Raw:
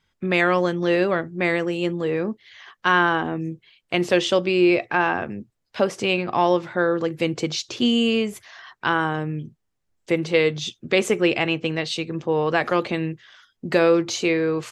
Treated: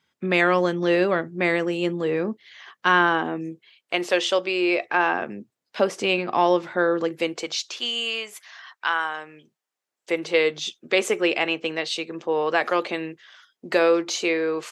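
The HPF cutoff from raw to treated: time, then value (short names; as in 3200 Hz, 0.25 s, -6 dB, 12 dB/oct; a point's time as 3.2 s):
2.91 s 160 Hz
4.11 s 470 Hz
4.67 s 470 Hz
5.33 s 220 Hz
7.03 s 220 Hz
7.69 s 910 Hz
9.15 s 910 Hz
10.33 s 370 Hz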